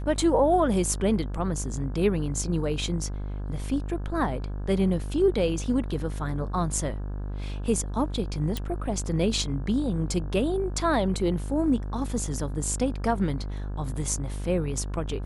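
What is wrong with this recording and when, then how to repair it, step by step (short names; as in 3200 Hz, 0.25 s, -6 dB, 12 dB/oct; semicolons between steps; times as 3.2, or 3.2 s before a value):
buzz 50 Hz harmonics 34 -32 dBFS
8.57 pop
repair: de-click; de-hum 50 Hz, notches 34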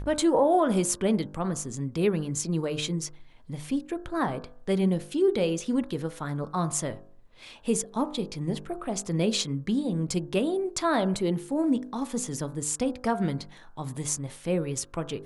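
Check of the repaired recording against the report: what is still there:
none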